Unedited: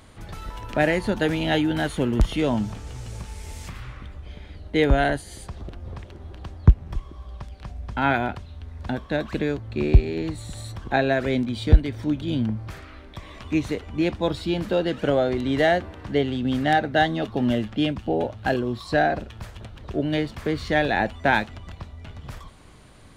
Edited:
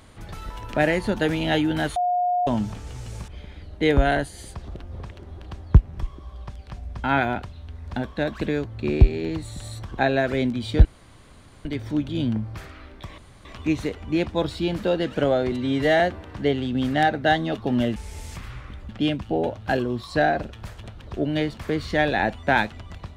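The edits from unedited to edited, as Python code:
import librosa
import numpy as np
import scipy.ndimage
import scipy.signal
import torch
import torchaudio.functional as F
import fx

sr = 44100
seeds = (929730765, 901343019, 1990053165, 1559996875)

y = fx.edit(x, sr, fx.bleep(start_s=1.96, length_s=0.51, hz=716.0, db=-19.0),
    fx.move(start_s=3.28, length_s=0.93, to_s=17.66),
    fx.insert_room_tone(at_s=11.78, length_s=0.8),
    fx.insert_room_tone(at_s=13.31, length_s=0.27),
    fx.stretch_span(start_s=15.38, length_s=0.32, factor=1.5), tone=tone)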